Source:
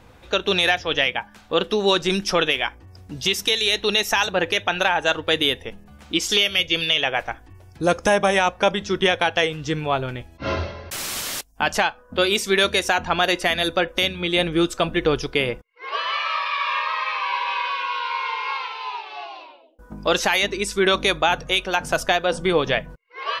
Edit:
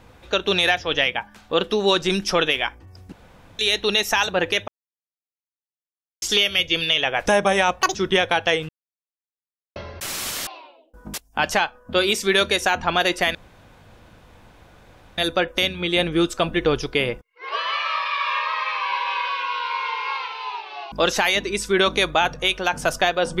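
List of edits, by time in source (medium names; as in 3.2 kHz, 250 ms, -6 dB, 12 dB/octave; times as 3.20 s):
3.12–3.59 s: room tone
4.68–6.22 s: mute
7.26–8.04 s: delete
8.59–8.85 s: speed 188%
9.59–10.66 s: mute
13.58 s: insert room tone 1.83 s
19.32–19.99 s: move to 11.37 s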